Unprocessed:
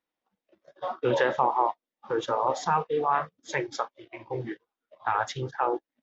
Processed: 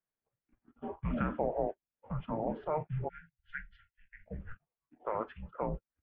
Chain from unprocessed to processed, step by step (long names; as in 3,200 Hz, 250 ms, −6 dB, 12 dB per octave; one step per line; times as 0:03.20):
time-frequency box erased 0:03.08–0:04.27, 350–1,700 Hz
single-sideband voice off tune −320 Hz 190–2,700 Hz
level −8.5 dB